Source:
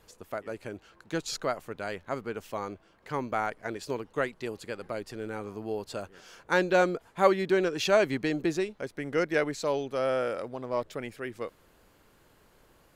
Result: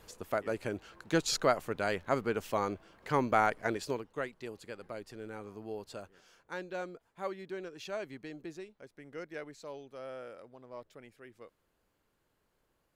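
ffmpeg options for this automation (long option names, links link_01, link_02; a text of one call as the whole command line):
ffmpeg -i in.wav -af "volume=3dB,afade=type=out:start_time=3.66:duration=0.42:silence=0.298538,afade=type=out:start_time=5.9:duration=0.66:silence=0.375837" out.wav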